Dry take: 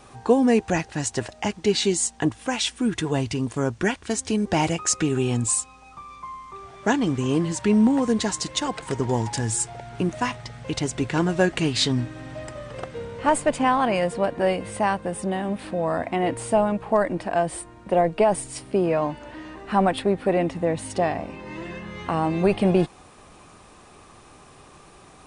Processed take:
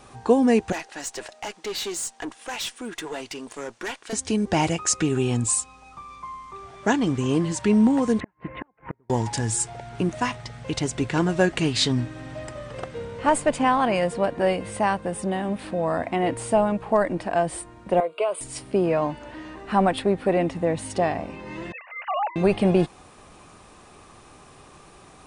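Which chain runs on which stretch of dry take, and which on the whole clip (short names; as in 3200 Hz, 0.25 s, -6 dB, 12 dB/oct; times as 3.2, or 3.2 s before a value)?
0.72–4.13 HPF 450 Hz + tube stage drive 26 dB, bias 0.3 + mismatched tape noise reduction decoder only
8.2–9.1 steep low-pass 2400 Hz 48 dB/oct + flipped gate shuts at -19 dBFS, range -38 dB
18–18.41 HPF 500 Hz + fixed phaser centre 1200 Hz, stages 8
21.72–22.36 sine-wave speech + elliptic high-pass 600 Hz + expander -40 dBFS
whole clip: dry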